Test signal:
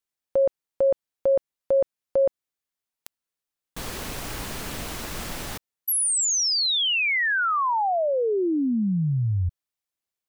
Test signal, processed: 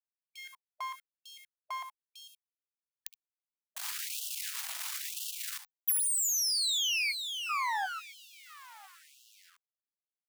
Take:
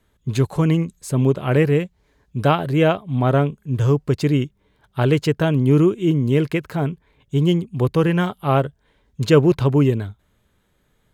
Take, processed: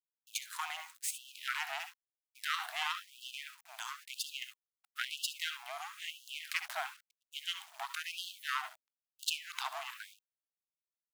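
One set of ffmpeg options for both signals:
-filter_complex "[0:a]asplit=2[a][b];[b]asoftclip=type=tanh:threshold=-17.5dB,volume=-12dB[c];[a][c]amix=inputs=2:normalize=0,highshelf=f=5.5k:g=3.5,aeval=exprs='max(val(0),0)':c=same,tiltshelf=f=1.1k:g=-4.5,asplit=2[d][e];[e]aecho=0:1:63|73:0.211|0.178[f];[d][f]amix=inputs=2:normalize=0,acrusher=bits=7:mix=0:aa=0.000001,acompressor=threshold=-21dB:ratio=6:attack=30:release=324:knee=1:detection=peak,afreqshift=-46,agate=range=-33dB:threshold=-53dB:ratio=3:release=30:detection=peak,afftfilt=real='re*gte(b*sr/1024,610*pow(2700/610,0.5+0.5*sin(2*PI*1*pts/sr)))':imag='im*gte(b*sr/1024,610*pow(2700/610,0.5+0.5*sin(2*PI*1*pts/sr)))':win_size=1024:overlap=0.75,volume=-5.5dB"

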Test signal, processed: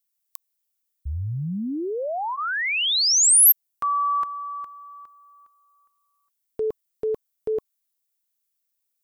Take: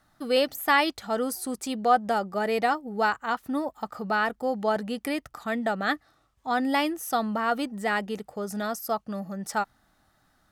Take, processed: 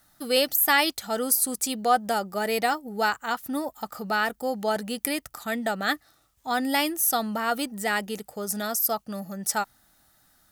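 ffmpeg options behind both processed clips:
-af "aemphasis=mode=production:type=75kf,bandreject=f=1.1k:w=15,volume=-1dB"

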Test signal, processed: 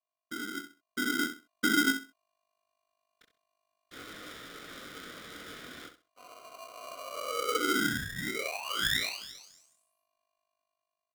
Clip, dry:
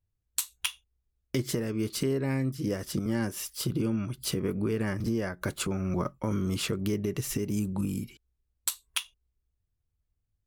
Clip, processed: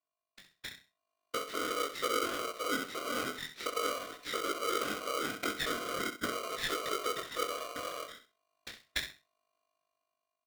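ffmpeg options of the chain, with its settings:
-af "afftfilt=real='hypot(re,im)*cos(2*PI*random(0))':imag='hypot(re,im)*sin(2*PI*random(1))':win_size=512:overlap=0.75,flanger=delay=19:depth=5.4:speed=0.45,acompressor=threshold=-42dB:ratio=4,aeval=exprs='val(0)+0.0002*(sin(2*PI*50*n/s)+sin(2*PI*2*50*n/s)/2+sin(2*PI*3*50*n/s)/3+sin(2*PI*4*50*n/s)/4+sin(2*PI*5*50*n/s)/5)':c=same,highpass=f=220:w=0.5412,highpass=f=220:w=1.3066,equalizer=f=230:t=q:w=4:g=-4,equalizer=f=400:t=q:w=4:g=9,equalizer=f=590:t=q:w=4:g=10,equalizer=f=870:t=q:w=4:g=-9,equalizer=f=1.8k:t=q:w=4:g=-9,equalizer=f=2.7k:t=q:w=4:g=8,lowpass=f=3k:w=0.5412,lowpass=f=3k:w=1.3066,aecho=1:1:65|130|195:0.316|0.0696|0.0153,dynaudnorm=f=330:g=7:m=12.5dB,equalizer=f=300:t=o:w=1.7:g=-6.5,bandreject=f=870:w=15,aeval=exprs='val(0)*sgn(sin(2*PI*870*n/s))':c=same"

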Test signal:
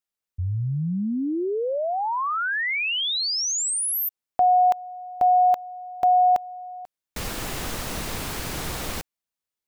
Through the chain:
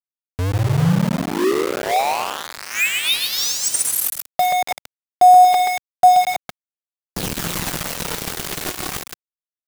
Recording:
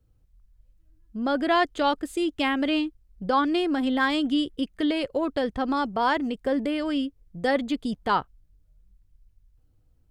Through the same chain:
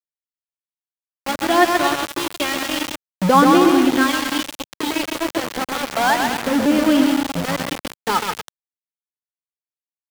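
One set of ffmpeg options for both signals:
-filter_complex "[0:a]aphaser=in_gain=1:out_gain=1:delay=2.8:decay=0.58:speed=0.29:type=sinusoidal,equalizer=f=170:t=o:w=0.45:g=11,asplit=2[a][b];[b]aecho=0:1:130|234|317.2|383.8|437:0.631|0.398|0.251|0.158|0.1[c];[a][c]amix=inputs=2:normalize=0,aeval=exprs='val(0)*gte(abs(val(0)),0.0944)':c=same,lowshelf=f=70:g=-11,volume=2.5dB"

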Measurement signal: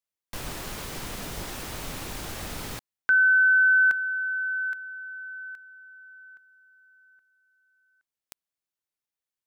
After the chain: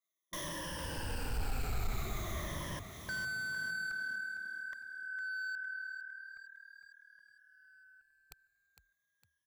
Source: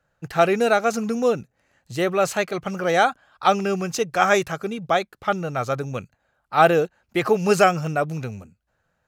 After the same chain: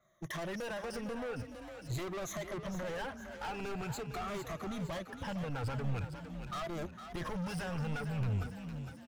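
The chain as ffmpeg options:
-filter_complex "[0:a]afftfilt=real='re*pow(10,23/40*sin(2*PI*(1.2*log(max(b,1)*sr/1024/100)/log(2)-(-0.45)*(pts-256)/sr)))':imag='im*pow(10,23/40*sin(2*PI*(1.2*log(max(b,1)*sr/1024/100)/log(2)-(-0.45)*(pts-256)/sr)))':win_size=1024:overlap=0.75,acompressor=threshold=-23dB:ratio=6:attack=0.11:release=202:knee=6:detection=peak,asoftclip=type=hard:threshold=-33dB,asubboost=boost=4.5:cutoff=120,asplit=6[a][b][c][d][e][f];[b]adelay=457,afreqshift=38,volume=-9.5dB[g];[c]adelay=914,afreqshift=76,volume=-16.1dB[h];[d]adelay=1371,afreqshift=114,volume=-22.6dB[i];[e]adelay=1828,afreqshift=152,volume=-29.2dB[j];[f]adelay=2285,afreqshift=190,volume=-35.7dB[k];[a][g][h][i][j][k]amix=inputs=6:normalize=0,adynamicequalizer=threshold=0.00355:dfrequency=2600:dqfactor=0.7:tfrequency=2600:tqfactor=0.7:attack=5:release=100:ratio=0.375:range=3.5:mode=cutabove:tftype=highshelf,volume=-4dB"

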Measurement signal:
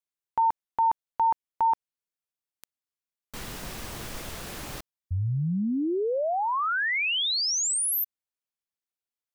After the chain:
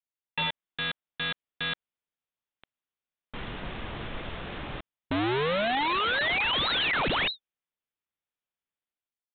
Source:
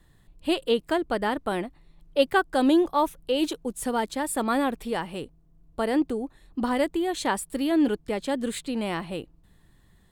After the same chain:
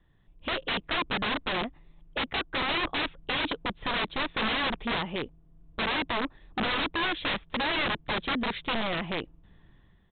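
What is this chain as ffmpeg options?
-af "dynaudnorm=f=120:g=7:m=8.5dB,aresample=8000,aeval=exprs='(mod(7.08*val(0)+1,2)-1)/7.08':c=same,aresample=44100,volume=-6.5dB"

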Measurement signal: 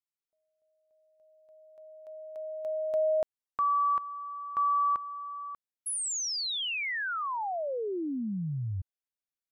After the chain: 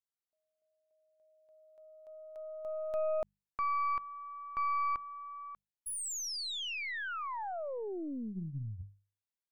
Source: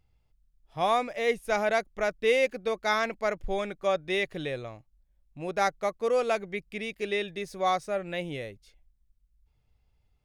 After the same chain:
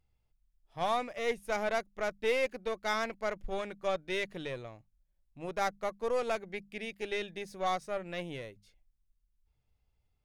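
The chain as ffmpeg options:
-af "bandreject=f=50:t=h:w=6,bandreject=f=100:t=h:w=6,bandreject=f=150:t=h:w=6,bandreject=f=200:t=h:w=6,aeval=exprs='0.251*(cos(1*acos(clip(val(0)/0.251,-1,1)))-cos(1*PI/2))+0.0141*(cos(8*acos(clip(val(0)/0.251,-1,1)))-cos(8*PI/2))':c=same,volume=-6dB"

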